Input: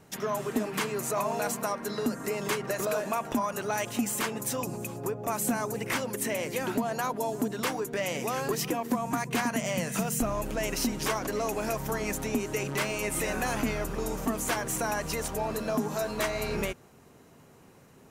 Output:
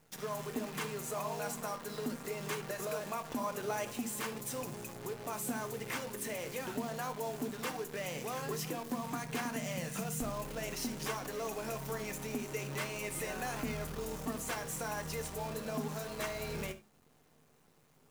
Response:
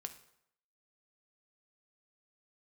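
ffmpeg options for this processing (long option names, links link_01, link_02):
-filter_complex "[0:a]asettb=1/sr,asplit=3[link_01][link_02][link_03];[link_01]atrim=end=3.404[link_04];[link_02]atrim=start=3.4:end=3.93,asetpts=PTS-STARTPTS,afade=type=in:duration=0.004:curve=qsin,afade=type=out:start_time=0.526:duration=0.004:curve=qsin,equalizer=frequency=380:width_type=o:width=2.3:gain=5[link_05];[link_03]atrim=start=3.926[link_06];[link_04][link_05]acrossfade=duration=0.004:curve1=hsin:curve2=qsin[link_07];[link_07][link_06]acrossfade=duration=0.004:curve1=qsin:curve2=hsin,acrusher=bits=7:dc=4:mix=0:aa=0.000001,bandreject=frequency=105:width_type=h:width=4,bandreject=frequency=210:width_type=h:width=4,bandreject=frequency=315:width_type=h:width=4[link_08];[1:a]atrim=start_sample=2205,atrim=end_sample=4410[link_09];[link_08][link_09]afir=irnorm=-1:irlink=0,volume=-5dB"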